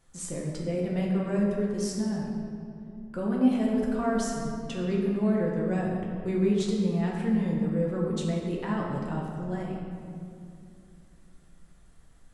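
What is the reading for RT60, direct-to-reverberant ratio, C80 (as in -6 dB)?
2.5 s, -3.0 dB, 2.5 dB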